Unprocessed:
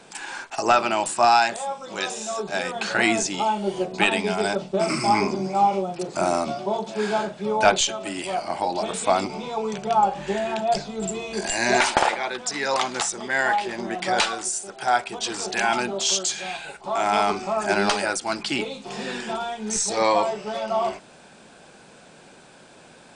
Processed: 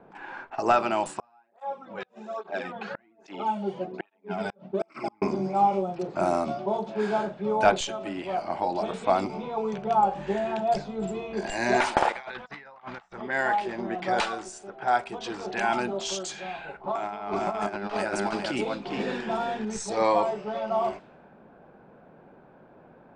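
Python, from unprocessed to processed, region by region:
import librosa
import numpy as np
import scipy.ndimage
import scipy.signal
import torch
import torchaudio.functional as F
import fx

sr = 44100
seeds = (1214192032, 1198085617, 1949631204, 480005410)

y = fx.chain(x, sr, fx.peak_eq(hz=140.0, db=-4.5, octaves=0.7),
    fx.gate_flip(shuts_db=-11.0, range_db=-37),
    fx.flanger_cancel(hz=1.2, depth_ms=3.4), at=(1.19, 5.22))
y = fx.chain(y, sr, fx.peak_eq(hz=330.0, db=-13.5, octaves=1.9),
    fx.over_compress(threshold_db=-35.0, ratio=-0.5), at=(12.12, 13.21))
y = fx.chain(y, sr, fx.echo_single(ms=410, db=-7.0),
    fx.over_compress(threshold_db=-25.0, ratio=-0.5), at=(16.57, 19.65))
y = fx.env_lowpass(y, sr, base_hz=1200.0, full_db=-19.5)
y = fx.high_shelf(y, sr, hz=2500.0, db=-12.0)
y = F.gain(torch.from_numpy(y), -1.5).numpy()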